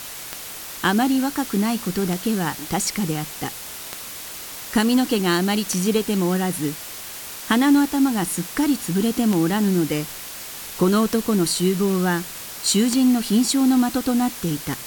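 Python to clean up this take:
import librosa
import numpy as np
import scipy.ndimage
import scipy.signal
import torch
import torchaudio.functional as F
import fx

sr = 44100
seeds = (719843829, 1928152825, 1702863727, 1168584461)

y = fx.fix_declick_ar(x, sr, threshold=10.0)
y = fx.noise_reduce(y, sr, print_start_s=6.75, print_end_s=7.25, reduce_db=30.0)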